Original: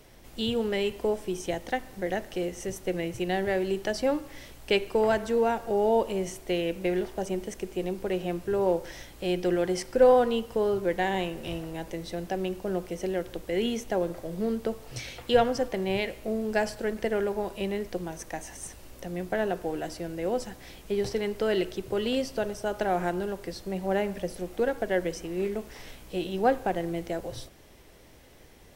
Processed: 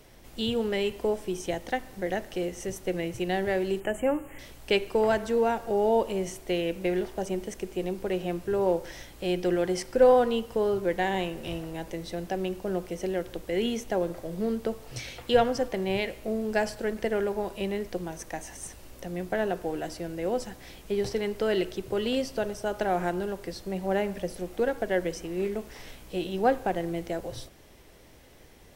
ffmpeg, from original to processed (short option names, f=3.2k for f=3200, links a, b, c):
-filter_complex "[0:a]asettb=1/sr,asplit=3[a][b][c];[a]atrim=end=3.804[d];[b]atrim=start=3.8:end=4.39,asetpts=PTS-STARTPTS,afade=t=in:d=0.004:c=qsin,afade=t=out:st=0.586:d=0.004:c=qsin,asuperstop=centerf=4600:order=12:qfactor=1.2[e];[c]atrim=start=4.386[f];[d][e]acrossfade=d=0.004:c1=hsin:c2=qsin[g];[g][f]acrossfade=d=0.004:c1=qsin:c2=hsin"